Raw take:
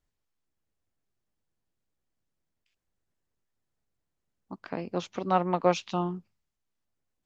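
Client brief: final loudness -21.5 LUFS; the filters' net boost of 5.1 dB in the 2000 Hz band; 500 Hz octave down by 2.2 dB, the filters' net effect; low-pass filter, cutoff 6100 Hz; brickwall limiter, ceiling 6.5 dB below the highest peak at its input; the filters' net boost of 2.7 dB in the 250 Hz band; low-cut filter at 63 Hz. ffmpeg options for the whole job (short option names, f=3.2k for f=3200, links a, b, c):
-af "highpass=63,lowpass=6.1k,equalizer=f=250:t=o:g=7,equalizer=f=500:t=o:g=-5.5,equalizer=f=2k:t=o:g=7.5,volume=9.5dB,alimiter=limit=-5.5dB:level=0:latency=1"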